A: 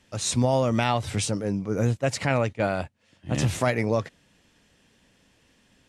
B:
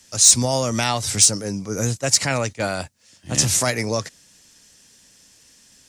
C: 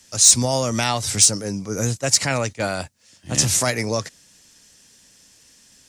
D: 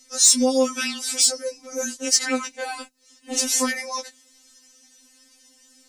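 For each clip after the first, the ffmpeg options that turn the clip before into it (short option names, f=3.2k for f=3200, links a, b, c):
-filter_complex "[0:a]highshelf=f=4.1k:t=q:w=1.5:g=10,acrossover=split=210|1300[a][b][c];[c]acontrast=68[d];[a][b][d]amix=inputs=3:normalize=0"
-af anull
-af "afftfilt=real='re*3.46*eq(mod(b,12),0)':imag='im*3.46*eq(mod(b,12),0)':win_size=2048:overlap=0.75"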